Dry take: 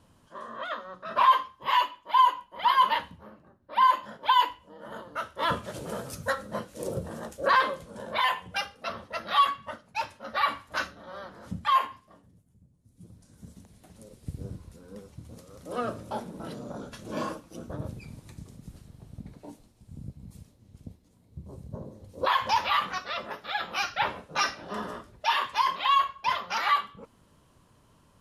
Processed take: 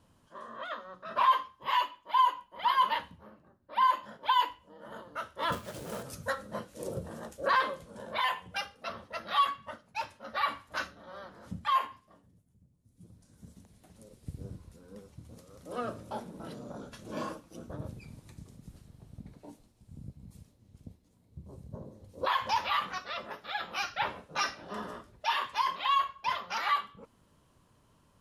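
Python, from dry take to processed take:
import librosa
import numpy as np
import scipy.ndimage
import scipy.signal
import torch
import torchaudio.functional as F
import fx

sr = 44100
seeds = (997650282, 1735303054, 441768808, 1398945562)

y = fx.quant_companded(x, sr, bits=4, at=(5.52, 6.03))
y = y * 10.0 ** (-4.5 / 20.0)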